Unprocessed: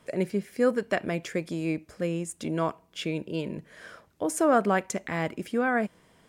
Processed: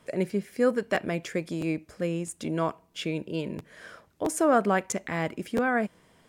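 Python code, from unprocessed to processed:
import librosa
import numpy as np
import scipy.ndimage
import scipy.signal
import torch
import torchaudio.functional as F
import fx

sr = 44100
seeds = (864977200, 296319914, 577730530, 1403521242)

y = fx.buffer_crackle(x, sr, first_s=0.94, period_s=0.66, block=512, kind='repeat')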